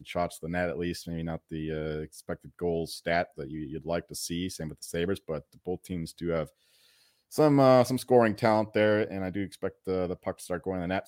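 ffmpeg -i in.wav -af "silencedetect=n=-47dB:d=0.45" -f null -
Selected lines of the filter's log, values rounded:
silence_start: 6.49
silence_end: 7.32 | silence_duration: 0.83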